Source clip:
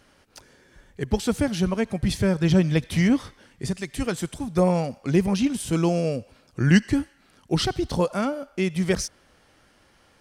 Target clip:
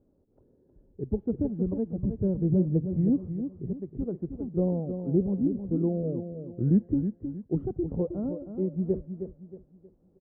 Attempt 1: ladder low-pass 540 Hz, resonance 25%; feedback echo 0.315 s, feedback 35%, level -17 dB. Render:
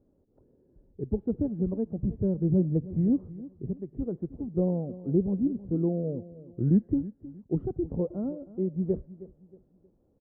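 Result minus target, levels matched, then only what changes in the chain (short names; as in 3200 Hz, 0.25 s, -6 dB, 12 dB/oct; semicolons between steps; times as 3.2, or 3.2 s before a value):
echo-to-direct -8.5 dB
change: feedback echo 0.315 s, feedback 35%, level -8.5 dB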